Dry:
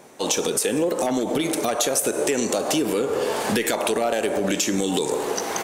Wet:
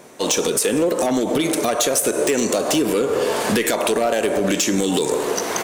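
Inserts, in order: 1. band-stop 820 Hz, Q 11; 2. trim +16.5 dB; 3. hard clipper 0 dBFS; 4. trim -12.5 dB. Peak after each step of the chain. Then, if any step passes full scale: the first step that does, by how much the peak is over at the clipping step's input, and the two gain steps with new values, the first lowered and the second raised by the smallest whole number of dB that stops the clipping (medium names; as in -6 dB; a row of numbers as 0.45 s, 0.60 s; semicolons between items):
-6.5 dBFS, +10.0 dBFS, 0.0 dBFS, -12.5 dBFS; step 2, 10.0 dB; step 2 +6.5 dB, step 4 -2.5 dB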